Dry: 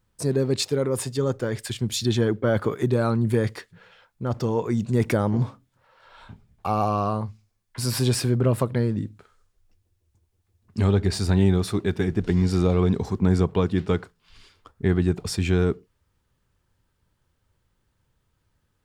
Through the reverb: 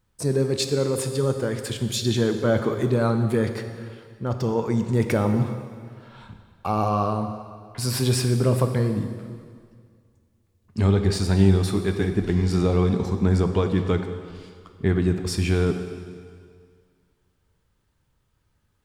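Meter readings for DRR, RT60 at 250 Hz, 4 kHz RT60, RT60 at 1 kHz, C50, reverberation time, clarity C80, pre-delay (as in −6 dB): 6.5 dB, 2.0 s, 1.9 s, 2.0 s, 8.0 dB, 2.0 s, 9.0 dB, 6 ms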